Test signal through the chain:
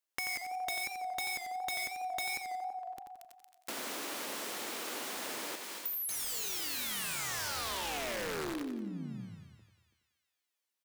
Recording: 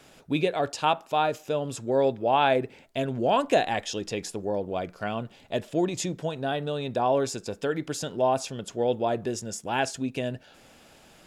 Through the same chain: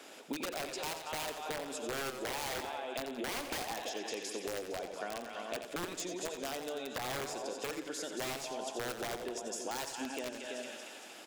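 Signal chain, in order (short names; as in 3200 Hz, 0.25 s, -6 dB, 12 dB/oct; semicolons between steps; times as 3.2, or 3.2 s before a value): echo 0.33 s -14 dB; in parallel at -2.5 dB: limiter -18.5 dBFS; on the sum: HPF 260 Hz 24 dB/oct; on a send: thinning echo 0.23 s, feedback 61%, high-pass 1100 Hz, level -8.5 dB; on the sum: wrapped overs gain 15 dB; compressor 10:1, threshold -34 dBFS; soft clip -21.5 dBFS; warbling echo 89 ms, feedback 45%, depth 114 cents, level -8.5 dB; gain -2.5 dB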